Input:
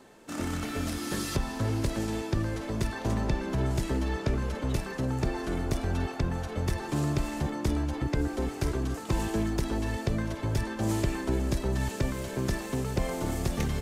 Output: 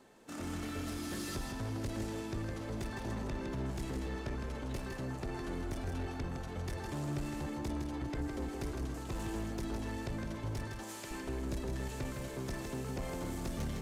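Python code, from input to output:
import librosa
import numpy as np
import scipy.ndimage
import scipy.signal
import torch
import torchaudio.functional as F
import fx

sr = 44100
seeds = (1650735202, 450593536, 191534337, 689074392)

y = fx.highpass(x, sr, hz=1200.0, slope=6, at=(10.67, 11.11))
y = 10.0 ** (-26.5 / 20.0) * np.tanh(y / 10.0 ** (-26.5 / 20.0))
y = y + 10.0 ** (-5.5 / 20.0) * np.pad(y, (int(160 * sr / 1000.0), 0))[:len(y)]
y = y * librosa.db_to_amplitude(-7.0)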